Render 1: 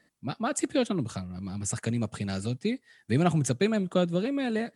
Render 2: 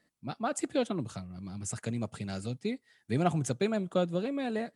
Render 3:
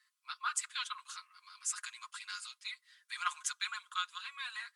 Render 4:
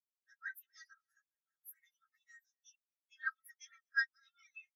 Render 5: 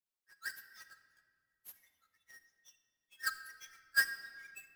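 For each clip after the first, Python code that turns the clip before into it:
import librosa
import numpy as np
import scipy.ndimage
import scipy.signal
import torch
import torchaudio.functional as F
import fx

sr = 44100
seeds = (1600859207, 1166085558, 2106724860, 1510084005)

y1 = fx.notch(x, sr, hz=1800.0, q=23.0)
y1 = fx.dynamic_eq(y1, sr, hz=770.0, q=1.0, threshold_db=-38.0, ratio=4.0, max_db=5)
y1 = y1 * 10.0 ** (-5.5 / 20.0)
y2 = scipy.signal.sosfilt(scipy.signal.cheby1(6, 3, 1000.0, 'highpass', fs=sr, output='sos'), y1)
y2 = y2 + 0.65 * np.pad(y2, (int(5.6 * sr / 1000.0), 0))[:len(y2)]
y2 = y2 * 10.0 ** (3.0 / 20.0)
y3 = fx.partial_stretch(y2, sr, pct=115)
y3 = y3 + 10.0 ** (-18.0 / 20.0) * np.pad(y3, (int(241 * sr / 1000.0), 0))[:len(y3)]
y3 = fx.spectral_expand(y3, sr, expansion=2.5)
y3 = y3 * 10.0 ** (3.5 / 20.0)
y4 = fx.halfwave_hold(y3, sr)
y4 = fx.room_shoebox(y4, sr, seeds[0], volume_m3=3400.0, walls='mixed', distance_m=0.98)
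y4 = y4 * 10.0 ** (-1.0 / 20.0)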